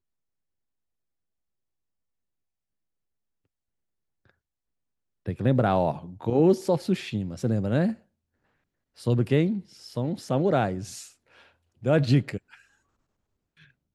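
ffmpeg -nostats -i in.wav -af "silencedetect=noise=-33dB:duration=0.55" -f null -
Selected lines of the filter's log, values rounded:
silence_start: 0.00
silence_end: 5.26 | silence_duration: 5.26
silence_start: 7.93
silence_end: 9.06 | silence_duration: 1.13
silence_start: 11.04
silence_end: 11.85 | silence_duration: 0.81
silence_start: 12.37
silence_end: 13.94 | silence_duration: 1.57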